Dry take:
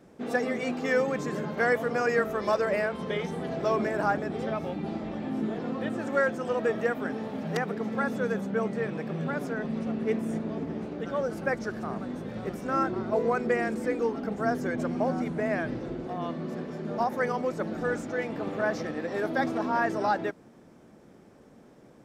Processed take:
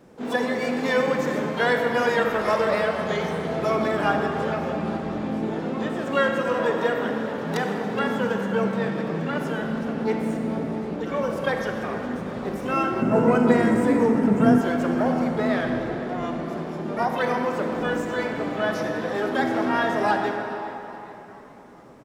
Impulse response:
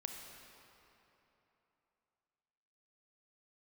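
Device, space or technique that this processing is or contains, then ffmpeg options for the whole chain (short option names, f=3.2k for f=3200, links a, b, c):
shimmer-style reverb: -filter_complex "[0:a]asplit=2[a][b];[b]asetrate=88200,aresample=44100,atempo=0.5,volume=-11dB[c];[a][c]amix=inputs=2:normalize=0[d];[1:a]atrim=start_sample=2205[e];[d][e]afir=irnorm=-1:irlink=0,asettb=1/sr,asplit=3[f][g][h];[f]atrim=end=13.024[i];[g]atrim=start=13.02:end=14.61,asetpts=PTS-STARTPTS,afade=t=in:d=0.004:c=qsin,afade=t=out:st=1.586:d=0.004:c=qsin,equalizer=f=125:t=o:w=1:g=11,equalizer=f=250:t=o:w=1:g=7,equalizer=f=4k:t=o:w=1:g=-7,equalizer=f=8k:t=o:w=1:g=6[j];[h]atrim=start=14.606[k];[i][j]acrossfade=d=0.004:c1=hsin:c2=qsin[l];[l][k]acrossfade=d=0.004:c1=qsin:c2=hsin,asplit=5[m][n][o][p][q];[n]adelay=421,afreqshift=98,volume=-19dB[r];[o]adelay=842,afreqshift=196,volume=-25.6dB[s];[p]adelay=1263,afreqshift=294,volume=-32.1dB[t];[q]adelay=1684,afreqshift=392,volume=-38.7dB[u];[m][r][s][t][u]amix=inputs=5:normalize=0,volume=6dB"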